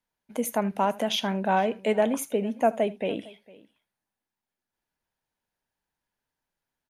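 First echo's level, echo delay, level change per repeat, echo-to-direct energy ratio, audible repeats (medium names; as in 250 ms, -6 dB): -21.0 dB, 78 ms, no regular repeats, -18.5 dB, 2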